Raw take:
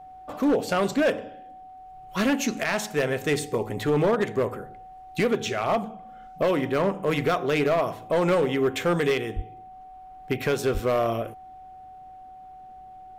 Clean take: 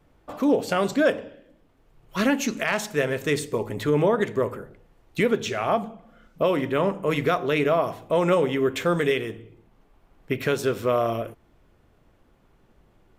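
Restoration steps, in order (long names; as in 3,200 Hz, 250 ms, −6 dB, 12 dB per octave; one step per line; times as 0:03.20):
clipped peaks rebuilt −17 dBFS
notch filter 750 Hz, Q 30
0:09.35–0:09.47: high-pass filter 140 Hz 24 dB per octave
0:10.73–0:10.85: high-pass filter 140 Hz 24 dB per octave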